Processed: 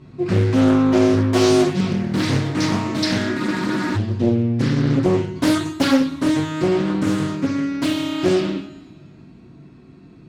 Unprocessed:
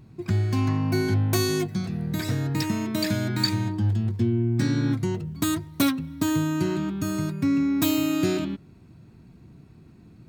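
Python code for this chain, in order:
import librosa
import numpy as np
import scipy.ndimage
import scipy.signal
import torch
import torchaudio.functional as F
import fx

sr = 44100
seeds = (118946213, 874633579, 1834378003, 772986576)

y = scipy.signal.sosfilt(scipy.signal.bessel(2, 5100.0, 'lowpass', norm='mag', fs=sr, output='sos'), x)
y = fx.low_shelf(y, sr, hz=86.0, db=-11.5)
y = fx.rider(y, sr, range_db=10, speed_s=0.5)
y = fx.rev_double_slope(y, sr, seeds[0], early_s=0.57, late_s=1.9, knee_db=-18, drr_db=-7.0)
y = fx.spec_freeze(y, sr, seeds[1], at_s=3.39, hold_s=0.57)
y = fx.doppler_dist(y, sr, depth_ms=0.58)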